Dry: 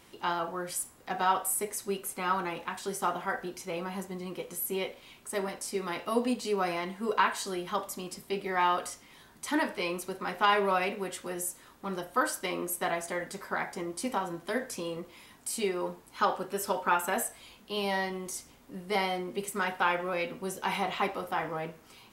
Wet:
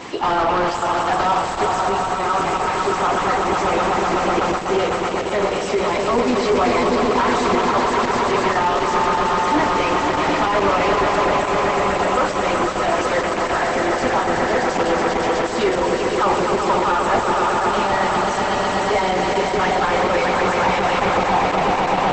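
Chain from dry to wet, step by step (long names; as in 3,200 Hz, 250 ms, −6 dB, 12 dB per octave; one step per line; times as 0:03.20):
spectral magnitudes quantised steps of 15 dB
parametric band 9,500 Hz +3.5 dB 2.4 octaves
notch filter 1,500 Hz, Q 11
in parallel at −6 dB: gain into a clipping stage and back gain 28 dB
on the sum: echo that builds up and dies away 125 ms, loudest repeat 5, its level −7.5 dB
on a send at −21 dB: convolution reverb RT60 0.85 s, pre-delay 7 ms
on the sum: mid-hump overdrive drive 33 dB, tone 1,000 Hz, clips at −10.5 dBFS
level +3.5 dB
Opus 12 kbit/s 48,000 Hz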